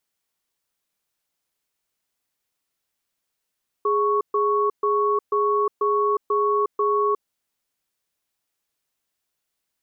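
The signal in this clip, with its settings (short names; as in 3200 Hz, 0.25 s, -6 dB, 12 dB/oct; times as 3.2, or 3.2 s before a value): cadence 415 Hz, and 1110 Hz, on 0.36 s, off 0.13 s, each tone -20.5 dBFS 3.39 s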